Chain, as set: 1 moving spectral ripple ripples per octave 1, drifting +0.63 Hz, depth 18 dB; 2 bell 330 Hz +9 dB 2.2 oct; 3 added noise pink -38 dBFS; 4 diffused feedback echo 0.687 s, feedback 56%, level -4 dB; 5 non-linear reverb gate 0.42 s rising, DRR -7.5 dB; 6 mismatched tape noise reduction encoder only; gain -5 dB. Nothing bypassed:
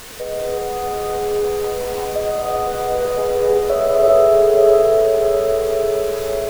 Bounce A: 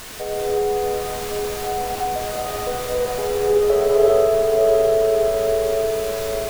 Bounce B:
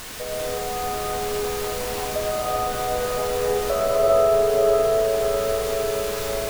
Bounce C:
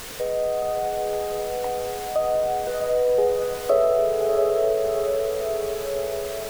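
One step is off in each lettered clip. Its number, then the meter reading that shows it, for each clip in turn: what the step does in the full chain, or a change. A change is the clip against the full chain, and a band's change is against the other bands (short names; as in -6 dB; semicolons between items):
1, 500 Hz band -3.0 dB; 2, 500 Hz band -7.0 dB; 5, momentary loudness spread change -4 LU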